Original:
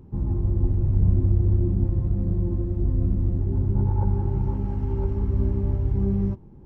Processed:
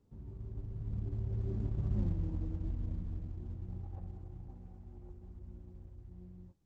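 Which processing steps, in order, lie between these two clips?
source passing by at 0:02.04, 32 m/s, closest 2.6 metres
downward compressor 4 to 1, threshold −36 dBFS, peak gain reduction 13 dB
level +5 dB
Opus 10 kbit/s 48,000 Hz

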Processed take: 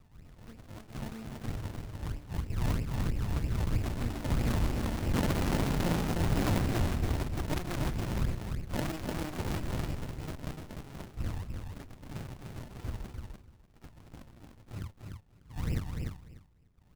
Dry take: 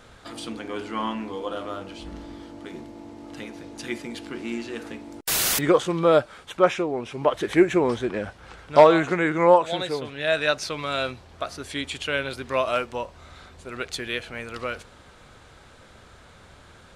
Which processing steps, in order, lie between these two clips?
wind on the microphone 120 Hz −23 dBFS
source passing by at 0:05.45, 5 m/s, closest 2.3 metres
noise reduction from a noise print of the clip's start 13 dB
in parallel at +0.5 dB: downward compressor, threshold −41 dBFS, peak gain reduction 25.5 dB
on the sum: wave folding −25.5 dBFS
auto-filter notch square 0.23 Hz 720–4,500 Hz
sample-and-hold swept by an LFO 34×, swing 100% 3.1 Hz
on a send: repeating echo 297 ms, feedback 17%, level −4.5 dB
on the sum: windowed peak hold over 65 samples
level +4 dB

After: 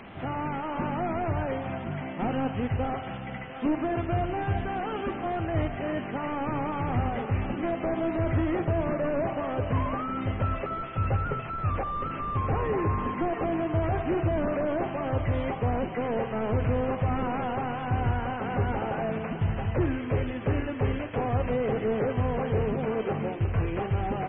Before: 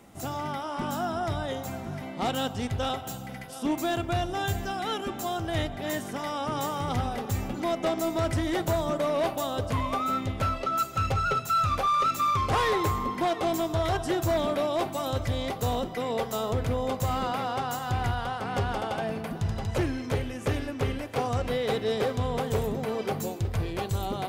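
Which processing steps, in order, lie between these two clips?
linear delta modulator 16 kbit/s, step −41 dBFS
on a send: repeating echo 75 ms, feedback 38%, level −17 dB
on the sum: level +2.5 dB
MP3 16 kbit/s 22,050 Hz

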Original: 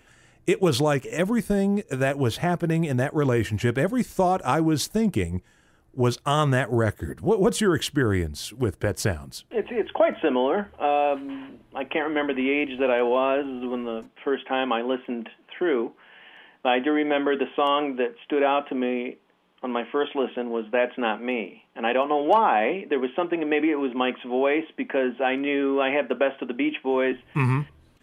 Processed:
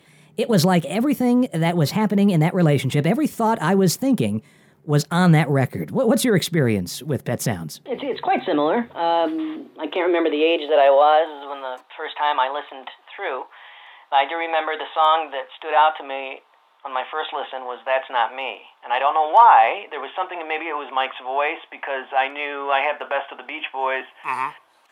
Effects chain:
gliding playback speed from 125% → 100%
transient designer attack −6 dB, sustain +3 dB
high-pass filter sweep 160 Hz → 840 Hz, 0:08.74–0:11.56
level +2.5 dB

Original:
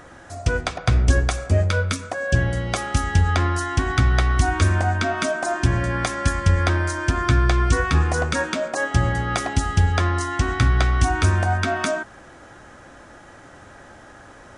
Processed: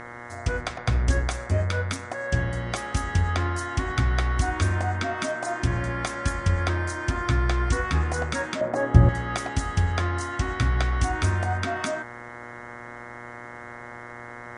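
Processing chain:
hum with harmonics 120 Hz, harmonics 18, −35 dBFS 0 dB per octave
0:08.61–0:09.09: tilt shelving filter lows +10 dB, about 1,300 Hz
level −5.5 dB

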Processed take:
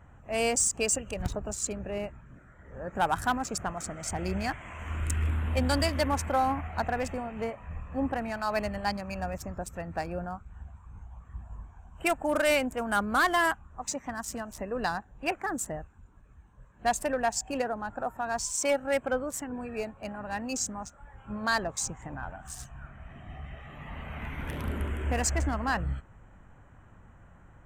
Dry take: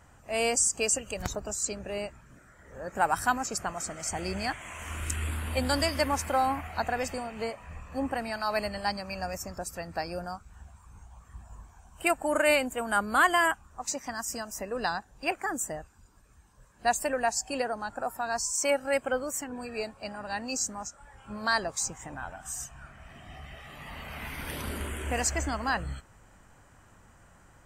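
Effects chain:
adaptive Wiener filter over 9 samples
bass and treble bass +5 dB, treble 0 dB
hard clipping −18.5 dBFS, distortion −18 dB

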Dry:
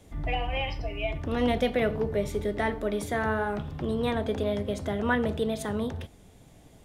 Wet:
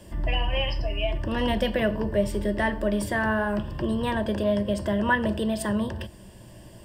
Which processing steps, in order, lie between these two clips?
EQ curve with evenly spaced ripples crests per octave 1.3, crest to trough 12 dB
in parallel at 0 dB: downward compressor, threshold −37 dBFS, peak gain reduction 17 dB

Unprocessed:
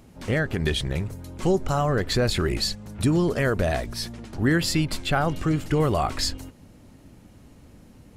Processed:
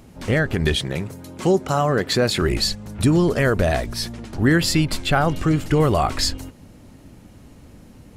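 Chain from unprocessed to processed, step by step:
0:00.75–0:02.42: high-pass filter 140 Hz 12 dB per octave
level +4.5 dB

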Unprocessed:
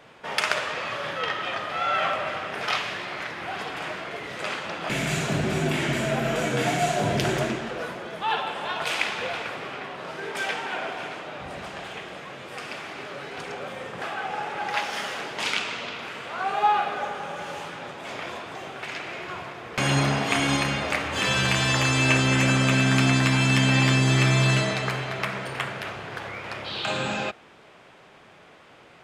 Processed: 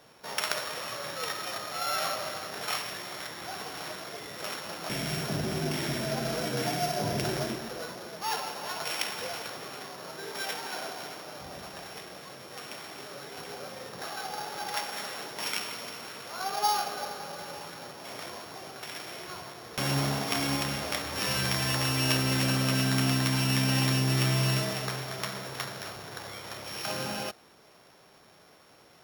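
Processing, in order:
samples sorted by size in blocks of 8 samples
level −6 dB

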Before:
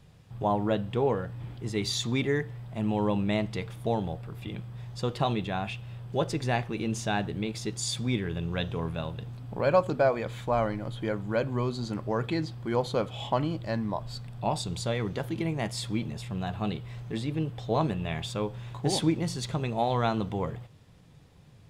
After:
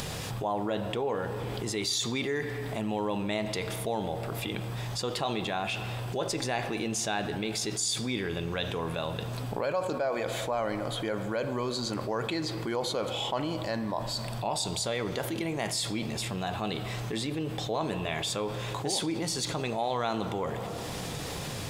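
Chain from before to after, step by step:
bass and treble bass −10 dB, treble +6 dB
upward compression, threshold −38 dBFS
on a send at −14.5 dB: convolution reverb RT60 2.6 s, pre-delay 3 ms
on the sum: envelope flattener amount 70%
level −8.5 dB

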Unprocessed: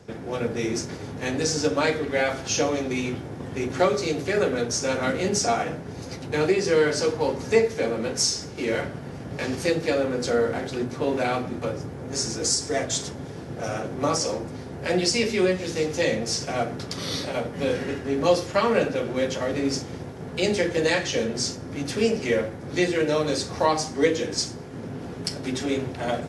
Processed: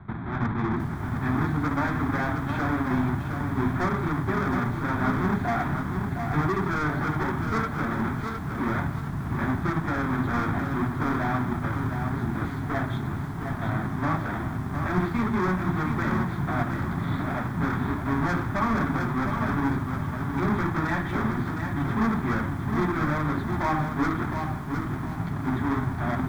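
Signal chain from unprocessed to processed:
each half-wave held at its own peak
in parallel at 0 dB: brickwall limiter −15 dBFS, peak gain reduction 8 dB
on the sum: elliptic low-pass filter 3,400 Hz, stop band 40 dB
soft clipping −8.5 dBFS, distortion −20 dB
low-shelf EQ 350 Hz +4.5 dB
phaser with its sweep stopped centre 1,200 Hz, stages 4
feedback echo at a low word length 712 ms, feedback 35%, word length 7 bits, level −6 dB
level −6.5 dB

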